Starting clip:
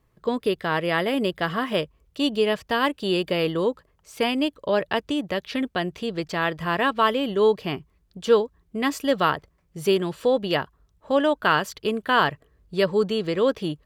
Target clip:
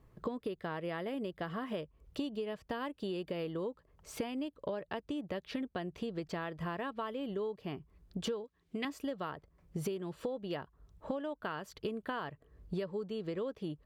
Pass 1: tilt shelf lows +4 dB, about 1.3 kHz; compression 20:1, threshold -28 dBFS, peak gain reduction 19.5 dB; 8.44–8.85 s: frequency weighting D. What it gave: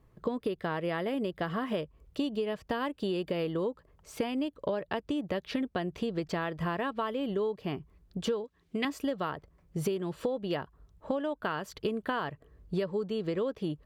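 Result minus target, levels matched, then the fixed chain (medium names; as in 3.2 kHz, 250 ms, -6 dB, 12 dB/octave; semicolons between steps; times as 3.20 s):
compression: peak gain reduction -6 dB
tilt shelf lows +4 dB, about 1.3 kHz; compression 20:1, threshold -34.5 dBFS, peak gain reduction 25.5 dB; 8.44–8.85 s: frequency weighting D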